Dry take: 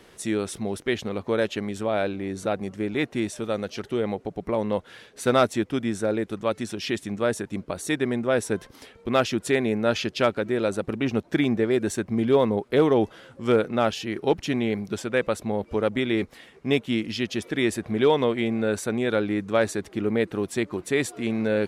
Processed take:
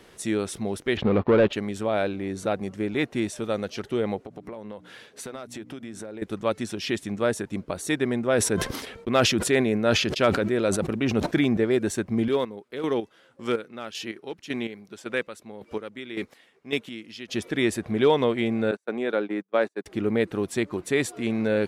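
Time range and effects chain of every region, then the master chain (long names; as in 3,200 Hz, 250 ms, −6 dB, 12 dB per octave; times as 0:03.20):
0:00.97–0:01.53: leveller curve on the samples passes 3 + high-frequency loss of the air 390 metres
0:04.22–0:06.22: high-pass filter 100 Hz + mains-hum notches 60/120/180/240/300 Hz + downward compressor 8 to 1, threshold −34 dBFS
0:08.33–0:11.57: noise gate −43 dBFS, range −22 dB + notch filter 850 Hz, Q 19 + level that may fall only so fast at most 50 dB per second
0:12.28–0:17.29: dynamic equaliser 710 Hz, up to −7 dB, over −35 dBFS, Q 1.2 + square-wave tremolo 1.8 Hz, depth 65%, duty 30% + high-pass filter 340 Hz 6 dB per octave
0:18.71–0:19.86: noise gate −28 dBFS, range −39 dB + Bessel high-pass filter 290 Hz, order 4 + high-shelf EQ 3,300 Hz −10 dB
whole clip: no processing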